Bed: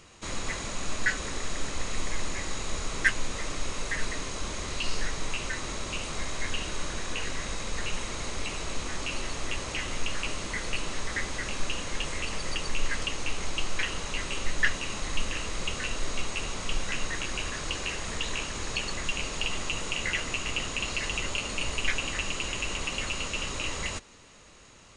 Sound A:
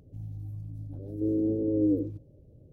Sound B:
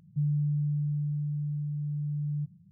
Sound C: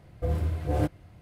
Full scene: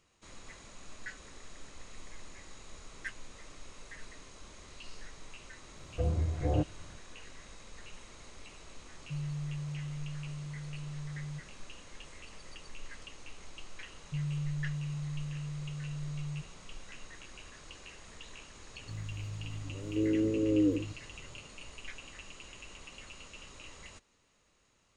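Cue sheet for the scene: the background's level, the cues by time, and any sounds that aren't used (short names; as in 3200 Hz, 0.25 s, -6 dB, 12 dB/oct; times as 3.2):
bed -17.5 dB
5.76 add C -3 dB + treble ducked by the level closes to 880 Hz, closed at -24 dBFS
8.94 add B -9.5 dB
13.96 add B -7 dB
18.75 add A -2 dB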